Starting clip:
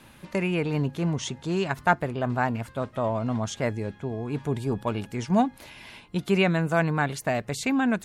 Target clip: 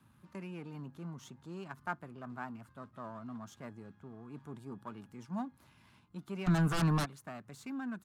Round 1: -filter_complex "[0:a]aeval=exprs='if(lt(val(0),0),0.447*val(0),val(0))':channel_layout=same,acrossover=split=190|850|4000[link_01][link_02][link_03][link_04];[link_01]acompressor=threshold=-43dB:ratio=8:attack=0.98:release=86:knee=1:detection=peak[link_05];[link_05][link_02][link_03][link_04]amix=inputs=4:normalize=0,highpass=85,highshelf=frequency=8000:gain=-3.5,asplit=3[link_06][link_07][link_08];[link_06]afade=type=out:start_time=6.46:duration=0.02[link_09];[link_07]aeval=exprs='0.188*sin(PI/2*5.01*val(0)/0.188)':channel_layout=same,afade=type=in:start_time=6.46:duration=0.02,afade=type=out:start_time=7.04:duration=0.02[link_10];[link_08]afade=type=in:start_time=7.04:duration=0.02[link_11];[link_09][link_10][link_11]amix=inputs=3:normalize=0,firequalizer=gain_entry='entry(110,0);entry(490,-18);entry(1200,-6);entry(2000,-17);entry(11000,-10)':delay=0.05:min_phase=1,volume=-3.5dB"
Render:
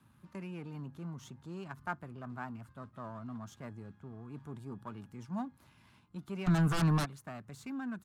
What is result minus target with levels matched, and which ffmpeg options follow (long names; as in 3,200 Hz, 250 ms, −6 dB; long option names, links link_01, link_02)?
downward compressor: peak gain reduction −9 dB
-filter_complex "[0:a]aeval=exprs='if(lt(val(0),0),0.447*val(0),val(0))':channel_layout=same,acrossover=split=190|850|4000[link_01][link_02][link_03][link_04];[link_01]acompressor=threshold=-53dB:ratio=8:attack=0.98:release=86:knee=1:detection=peak[link_05];[link_05][link_02][link_03][link_04]amix=inputs=4:normalize=0,highpass=85,highshelf=frequency=8000:gain=-3.5,asplit=3[link_06][link_07][link_08];[link_06]afade=type=out:start_time=6.46:duration=0.02[link_09];[link_07]aeval=exprs='0.188*sin(PI/2*5.01*val(0)/0.188)':channel_layout=same,afade=type=in:start_time=6.46:duration=0.02,afade=type=out:start_time=7.04:duration=0.02[link_10];[link_08]afade=type=in:start_time=7.04:duration=0.02[link_11];[link_09][link_10][link_11]amix=inputs=3:normalize=0,firequalizer=gain_entry='entry(110,0);entry(490,-18);entry(1200,-6);entry(2000,-17);entry(11000,-10)':delay=0.05:min_phase=1,volume=-3.5dB"